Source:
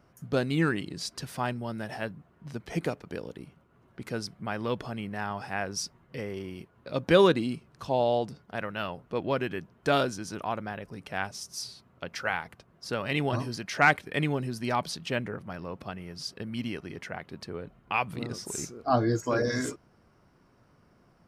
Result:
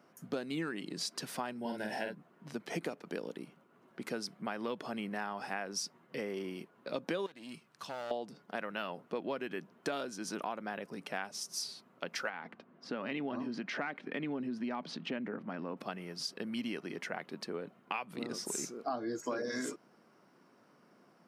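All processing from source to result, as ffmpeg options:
ffmpeg -i in.wav -filter_complex "[0:a]asettb=1/sr,asplit=3[link_01][link_02][link_03];[link_01]atrim=end=1.604[link_04];[link_02]atrim=start=1.6:end=2.15,asetpts=PTS-STARTPTS,afade=type=in:duration=0.004:curve=qsin,afade=type=out:start_time=0.546:duration=0.004:curve=qsin,asuperstop=centerf=1200:order=20:qfactor=4.4,asplit=2[link_05][link_06];[link_06]adelay=47,volume=-3.5dB[link_07];[link_05][link_07]amix=inputs=2:normalize=0,atrim=end_sample=24255[link_08];[link_03]atrim=start=2.146[link_09];[link_04][link_08]acrossfade=duration=0.004:curve1=hsin:curve2=qsin[link_10];[link_10][link_09]acrossfade=duration=0.004:curve1=qsin:curve2=hsin,asettb=1/sr,asplit=3[link_11][link_12][link_13];[link_11]atrim=end=7.264[link_14];[link_12]atrim=start=7.26:end=8.11,asetpts=PTS-STARTPTS,afade=type=in:duration=0.004:curve=qsin,afade=type=out:start_time=0.846:duration=0.004:curve=qsin,aeval=exprs='clip(val(0),-1,0.0447)':channel_layout=same,equalizer=frequency=340:width_type=o:width=2.8:gain=-10,acompressor=threshold=-37dB:ratio=2.5:attack=3.2:release=140:knee=1:detection=peak[link_15];[link_13]atrim=start=8.106[link_16];[link_14][link_15]acrossfade=duration=0.004:curve1=hsin:curve2=qsin[link_17];[link_17][link_16]acrossfade=duration=0.004:curve1=qsin:curve2=hsin,asettb=1/sr,asplit=3[link_18][link_19][link_20];[link_18]atrim=end=12.294[link_21];[link_19]atrim=start=12.29:end=15.77,asetpts=PTS-STARTPTS,afade=type=in:duration=0.004:curve=qsin,afade=type=out:start_time=3.476:duration=0.004:curve=qsin,lowpass=3000,equalizer=frequency=250:width_type=o:width=0.52:gain=8,acompressor=threshold=-34dB:ratio=2:attack=3.2:release=140:knee=1:detection=peak[link_22];[link_20]atrim=start=15.766[link_23];[link_21][link_22]acrossfade=duration=0.004:curve1=hsin:curve2=qsin[link_24];[link_24][link_23]acrossfade=duration=0.004:curve1=qsin:curve2=hsin,highpass=frequency=190:width=0.5412,highpass=frequency=190:width=1.3066,acompressor=threshold=-33dB:ratio=12" out.wav

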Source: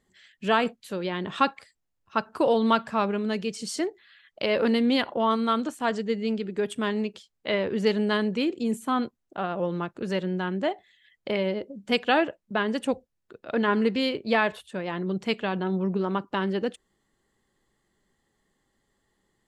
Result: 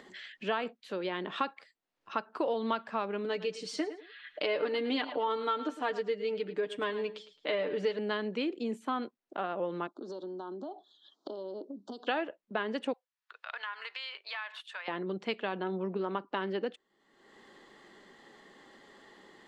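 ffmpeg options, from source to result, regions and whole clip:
ffmpeg -i in.wav -filter_complex "[0:a]asettb=1/sr,asplit=3[link_01][link_02][link_03];[link_01]atrim=end=3.244[link_04];[link_02]atrim=start=3.24:end=7.99,asetpts=PTS-STARTPTS,afade=type=in:duration=0.004:curve=qsin,afade=type=out:start_time=4.746:duration=0.004:curve=qsin,aecho=1:1:6.7:0.68,atrim=end_sample=209475,aecho=1:1:108|216:0.178|0.0373,atrim=end_sample=209475[link_05];[link_03]atrim=start=7.986[link_06];[link_04][link_05]acrossfade=duration=0.004:curve1=hsin:curve2=qsin[link_07];[link_07][link_06]acrossfade=duration=0.004:curve1=qsin:curve2=hsin,asettb=1/sr,asplit=3[link_08][link_09][link_10];[link_08]atrim=end=9.874[link_11];[link_09]atrim=start=9.87:end=12.07,asetpts=PTS-STARTPTS,afade=type=in:duration=0.004:curve=qsin,afade=type=out:start_time=2.196:duration=0.004:curve=qsin,highpass=frequency=240:width=0.5412,highpass=frequency=240:width=1.3066,equalizer=frequency=280:width_type=q:width=4:gain=6,equalizer=frequency=500:width_type=q:width=4:gain=-8,equalizer=frequency=1400:width_type=q:width=4:gain=-3,lowpass=frequency=7400:width=0.5412,lowpass=frequency=7400:width=1.3066,acompressor=threshold=-34dB:ratio=6:attack=3.2:release=140:knee=1:detection=peak,asuperstop=centerf=2200:order=8:qfactor=0.96[link_12];[link_10]atrim=start=12.066[link_13];[link_11][link_12]acrossfade=duration=0.004:curve1=hsin:curve2=qsin[link_14];[link_14][link_13]acrossfade=duration=0.004:curve1=qsin:curve2=hsin,asettb=1/sr,asplit=3[link_15][link_16][link_17];[link_15]atrim=end=12.934[link_18];[link_16]atrim=start=12.93:end=14.88,asetpts=PTS-STARTPTS,afade=type=in:duration=0.004:curve=qsin,afade=type=out:start_time=1.946:duration=0.004:curve=qsin,highpass=frequency=1000:width=0.5412,highpass=frequency=1000:width=1.3066,acompressor=threshold=-35dB:ratio=3:attack=3.2:release=140:knee=1:detection=peak[link_19];[link_17]atrim=start=14.876[link_20];[link_18][link_19]acrossfade=duration=0.004:curve1=hsin:curve2=qsin[link_21];[link_21][link_20]acrossfade=duration=0.004:curve1=qsin:curve2=hsin,acompressor=mode=upward:threshold=-32dB:ratio=2.5,acrossover=split=220 5200:gain=0.0708 1 0.1[link_22][link_23][link_24];[link_22][link_23][link_24]amix=inputs=3:normalize=0,acompressor=threshold=-27dB:ratio=3,volume=-2.5dB" out.wav

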